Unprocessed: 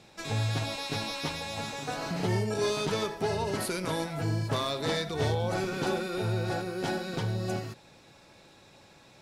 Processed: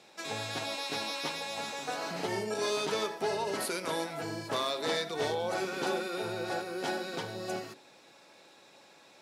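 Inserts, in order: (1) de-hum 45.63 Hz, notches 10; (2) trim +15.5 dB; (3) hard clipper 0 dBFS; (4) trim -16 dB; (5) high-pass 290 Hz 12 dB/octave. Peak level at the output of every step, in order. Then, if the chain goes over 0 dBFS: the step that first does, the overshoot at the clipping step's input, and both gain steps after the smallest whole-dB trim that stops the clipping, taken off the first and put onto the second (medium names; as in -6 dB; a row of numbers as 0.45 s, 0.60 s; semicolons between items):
-17.5 dBFS, -2.0 dBFS, -2.0 dBFS, -18.0 dBFS, -18.0 dBFS; nothing clips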